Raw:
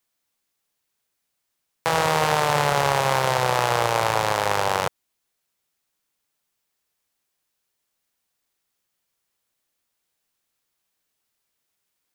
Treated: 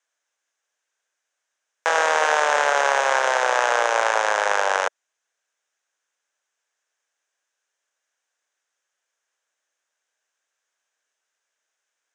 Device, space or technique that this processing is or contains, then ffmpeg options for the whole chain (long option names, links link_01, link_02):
phone speaker on a table: -af "highpass=frequency=370:width=0.5412,highpass=frequency=370:width=1.3066,equalizer=frequency=370:width_type=q:width=4:gain=-5,equalizer=frequency=600:width_type=q:width=4:gain=3,equalizer=frequency=1600:width_type=q:width=4:gain=9,equalizer=frequency=4400:width_type=q:width=4:gain=-8,equalizer=frequency=6400:width_type=q:width=4:gain=6,lowpass=frequency=7700:width=0.5412,lowpass=frequency=7700:width=1.3066"